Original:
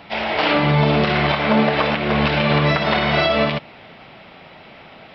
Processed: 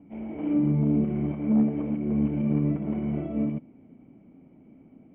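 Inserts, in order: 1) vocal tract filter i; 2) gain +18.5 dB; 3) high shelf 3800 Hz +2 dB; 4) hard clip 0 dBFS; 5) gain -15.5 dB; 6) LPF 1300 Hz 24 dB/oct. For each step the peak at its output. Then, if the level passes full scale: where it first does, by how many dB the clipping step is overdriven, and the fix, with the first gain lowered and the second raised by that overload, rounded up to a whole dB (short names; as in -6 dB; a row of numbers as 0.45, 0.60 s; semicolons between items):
-14.0, +4.5, +4.5, 0.0, -15.5, -15.0 dBFS; step 2, 4.5 dB; step 2 +13.5 dB, step 5 -10.5 dB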